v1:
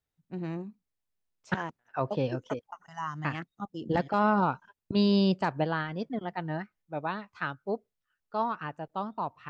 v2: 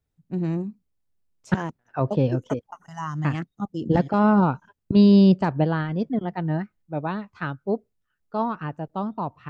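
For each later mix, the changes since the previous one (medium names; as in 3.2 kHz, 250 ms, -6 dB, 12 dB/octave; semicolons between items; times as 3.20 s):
first voice: remove distance through air 110 m; master: add bass shelf 480 Hz +12 dB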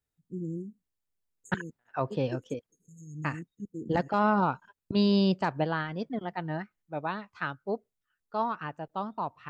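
first voice: add brick-wall FIR band-stop 510–6400 Hz; master: add bass shelf 480 Hz -12 dB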